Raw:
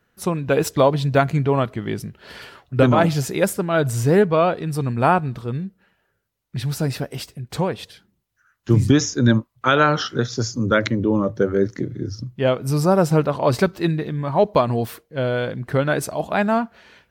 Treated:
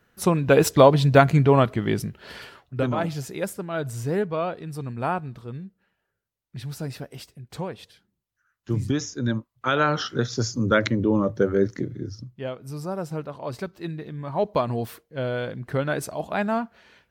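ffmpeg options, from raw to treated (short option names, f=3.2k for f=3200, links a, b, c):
-af "volume=18dB,afade=t=out:st=1.99:d=0.82:silence=0.266073,afade=t=in:st=9.36:d=1.02:silence=0.421697,afade=t=out:st=11.7:d=0.8:silence=0.251189,afade=t=in:st=13.71:d=0.98:silence=0.375837"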